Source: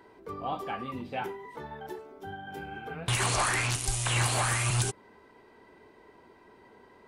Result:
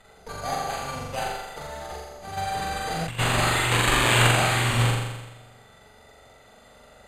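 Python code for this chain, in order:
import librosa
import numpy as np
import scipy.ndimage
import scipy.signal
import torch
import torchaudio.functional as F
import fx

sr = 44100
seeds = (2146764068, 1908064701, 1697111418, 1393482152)

y = fx.lower_of_two(x, sr, delay_ms=1.5)
y = fx.high_shelf(y, sr, hz=5800.0, db=11.5, at=(3.71, 4.27))
y = np.repeat(y[::8], 8)[:len(y)]
y = scipy.signal.sosfilt(scipy.signal.butter(4, 12000.0, 'lowpass', fs=sr, output='sos'), y)
y = fx.room_flutter(y, sr, wall_m=7.3, rt60_s=1.1)
y = fx.over_compress(y, sr, threshold_db=-35.0, ratio=-1.0, at=(2.36, 3.18), fade=0.02)
y = y * librosa.db_to_amplitude(3.0)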